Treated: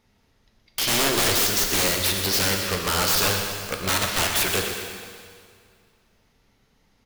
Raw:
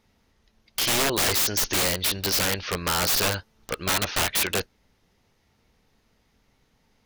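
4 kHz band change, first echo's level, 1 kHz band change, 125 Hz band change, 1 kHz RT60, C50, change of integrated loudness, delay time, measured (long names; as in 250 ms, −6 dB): +2.5 dB, −9.5 dB, +2.0 dB, +2.5 dB, 2.1 s, 3.0 dB, +2.0 dB, 121 ms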